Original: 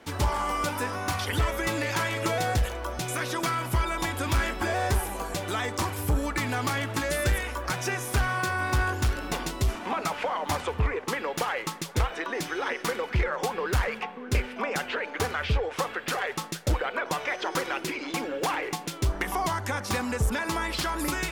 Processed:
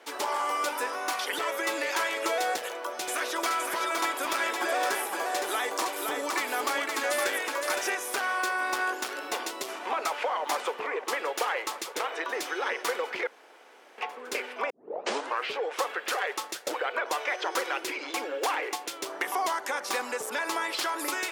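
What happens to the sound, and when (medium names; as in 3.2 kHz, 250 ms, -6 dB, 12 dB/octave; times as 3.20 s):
2.56–7.95 s: delay 514 ms -4 dB
9.86–11.03 s: echo throw 600 ms, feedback 80%, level -14 dB
13.27–13.98 s: room tone
14.70 s: tape start 0.84 s
whole clip: high-pass 370 Hz 24 dB/octave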